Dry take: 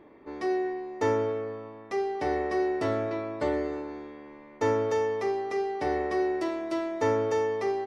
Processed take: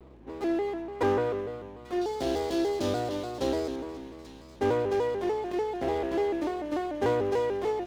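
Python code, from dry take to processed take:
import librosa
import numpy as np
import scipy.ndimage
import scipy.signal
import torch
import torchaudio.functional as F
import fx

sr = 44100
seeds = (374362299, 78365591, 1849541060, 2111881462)

y = scipy.ndimage.median_filter(x, 25, mode='constant')
y = fx.high_shelf_res(y, sr, hz=3200.0, db=9.5, q=1.5, at=(2.01, 3.76))
y = fx.add_hum(y, sr, base_hz=60, snr_db=24)
y = fx.peak_eq(y, sr, hz=1300.0, db=4.5, octaves=1.1, at=(0.68, 1.41))
y = fx.echo_wet_highpass(y, sr, ms=838, feedback_pct=35, hz=2200.0, wet_db=-14)
y = fx.vibrato_shape(y, sr, shape='square', rate_hz=3.4, depth_cents=160.0)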